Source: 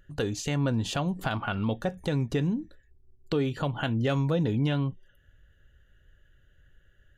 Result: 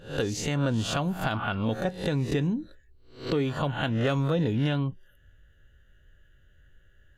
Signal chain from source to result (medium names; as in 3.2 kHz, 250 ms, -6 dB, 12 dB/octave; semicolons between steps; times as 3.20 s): reverse spectral sustain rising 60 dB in 0.40 s